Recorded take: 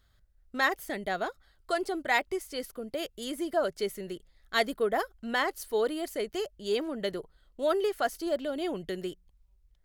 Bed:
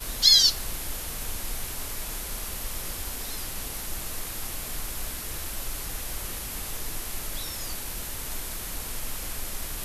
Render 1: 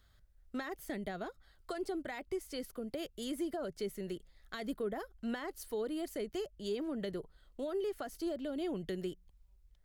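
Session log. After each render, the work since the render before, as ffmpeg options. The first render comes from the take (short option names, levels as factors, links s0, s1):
-filter_complex "[0:a]alimiter=limit=0.075:level=0:latency=1:release=43,acrossover=split=320[s0][s1];[s1]acompressor=threshold=0.00631:ratio=3[s2];[s0][s2]amix=inputs=2:normalize=0"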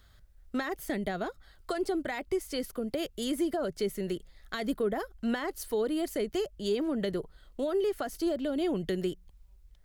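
-af "volume=2.37"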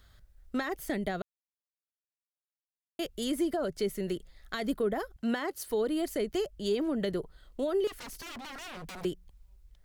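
-filter_complex "[0:a]asettb=1/sr,asplit=3[s0][s1][s2];[s0]atrim=end=5.164[s3];[s1]atrim=start=5.16:end=5.69,asetpts=PTS-STARTPTS,afade=t=in:d=0.004:c=qsin,afade=t=out:st=0.526:d=0.004:c=qsin,highpass=100[s4];[s2]atrim=start=5.686[s5];[s3][s4]acrossfade=d=0.004:c1=hsin:c2=qsin[s6];[s6][s5]acrossfade=d=0.004:c1=qsin:c2=hsin,asettb=1/sr,asplit=3[s7][s8][s9];[s7]atrim=end=7.874[s10];[s8]atrim=start=7.87:end=9.05,asetpts=PTS-STARTPTS,afade=t=in:d=0.004:c=qsin,afade=t=out:st=1.176:d=0.004:c=qsin,aeval=exprs='0.0119*(abs(mod(val(0)/0.0119+3,4)-2)-1)':c=same[s11];[s9]atrim=start=9.046[s12];[s10][s11]acrossfade=d=0.004:c1=hsin:c2=qsin[s13];[s13][s12]acrossfade=d=0.004:c1=qsin:c2=hsin,asplit=3[s14][s15][s16];[s14]atrim=end=1.22,asetpts=PTS-STARTPTS,afade=t=out:st=1.216:d=0.004:c=hsin[s17];[s15]atrim=start=1.22:end=2.99,asetpts=PTS-STARTPTS,volume=0[s18];[s16]atrim=start=2.99,asetpts=PTS-STARTPTS,afade=t=in:d=0.004:c=hsin[s19];[s17][s18][s19]concat=n=3:v=0:a=1"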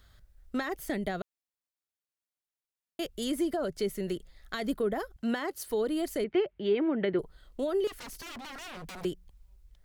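-filter_complex "[0:a]asettb=1/sr,asplit=3[s0][s1][s2];[s0]atrim=end=6.244[s3];[s1]atrim=start=6.24:end=7.19,asetpts=PTS-STARTPTS,afade=t=in:d=0.004:c=qsin,afade=t=out:st=0.946:d=0.004:c=qsin,highpass=120,equalizer=f=360:t=q:w=4:g=6,equalizer=f=870:t=q:w=4:g=5,equalizer=f=1500:t=q:w=4:g=4,equalizer=f=2200:t=q:w=4:g=9,lowpass=f=3200:w=0.5412,lowpass=f=3200:w=1.3066[s4];[s2]atrim=start=7.186[s5];[s3][s4]acrossfade=d=0.004:c1=hsin:c2=qsin[s6];[s6][s5]acrossfade=d=0.004:c1=qsin:c2=hsin"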